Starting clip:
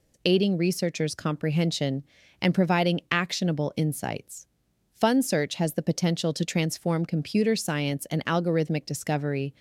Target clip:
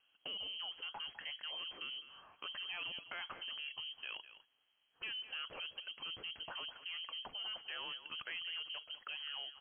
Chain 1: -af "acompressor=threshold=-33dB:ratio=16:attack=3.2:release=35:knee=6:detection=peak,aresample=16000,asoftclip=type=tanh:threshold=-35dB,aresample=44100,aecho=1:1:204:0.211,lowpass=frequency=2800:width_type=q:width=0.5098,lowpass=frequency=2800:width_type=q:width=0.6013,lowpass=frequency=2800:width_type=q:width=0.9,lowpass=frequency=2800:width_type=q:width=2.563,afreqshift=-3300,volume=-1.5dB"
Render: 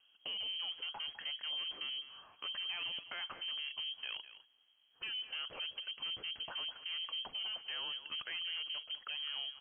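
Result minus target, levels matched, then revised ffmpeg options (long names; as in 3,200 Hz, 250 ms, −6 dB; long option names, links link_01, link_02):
250 Hz band −4.5 dB
-af "acompressor=threshold=-33dB:ratio=16:attack=3.2:release=35:knee=6:detection=peak,lowshelf=frequency=260:gain=-11,aresample=16000,asoftclip=type=tanh:threshold=-35dB,aresample=44100,aecho=1:1:204:0.211,lowpass=frequency=2800:width_type=q:width=0.5098,lowpass=frequency=2800:width_type=q:width=0.6013,lowpass=frequency=2800:width_type=q:width=0.9,lowpass=frequency=2800:width_type=q:width=2.563,afreqshift=-3300,volume=-1.5dB"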